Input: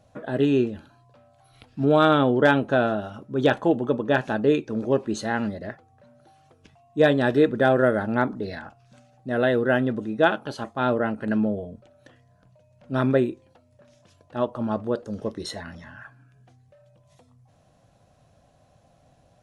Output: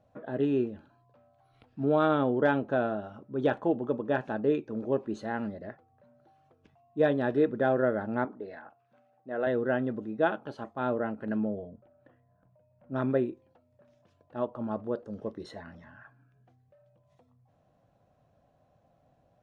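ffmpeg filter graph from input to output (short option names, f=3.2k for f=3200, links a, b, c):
-filter_complex "[0:a]asettb=1/sr,asplit=3[a][b][c];[a]atrim=end=8.254[d];[b]atrim=start=8.25:end=9.47,asetpts=PTS-STARTPTS,afade=t=in:d=0.004:c=qsin,afade=t=out:st=1.216:d=0.004:c=qsin,highpass=43,bass=f=250:g=-13,treble=f=4k:g=-14[e];[c]atrim=start=9.466[f];[d][e]acrossfade=d=0.004:c1=hsin:c2=qsin[g];[g][f]acrossfade=d=0.004:c1=qsin:c2=hsin,asettb=1/sr,asplit=3[h][i][j];[h]atrim=end=11.694[k];[i]atrim=start=11.69:end=12.96,asetpts=PTS-STARTPTS,afade=t=in:d=0.004:c=qsin,afade=t=out:st=1.266:d=0.004:c=qsin,lowpass=2k,bandreject=f=440:w=12[l];[j]atrim=start=12.956[m];[k][l]acrossfade=d=0.004:c1=hsin:c2=qsin[n];[n][m]acrossfade=d=0.004:c1=qsin:c2=hsin,lowpass=f=1.2k:p=1,lowshelf=f=150:g=-6.5,volume=-5dB"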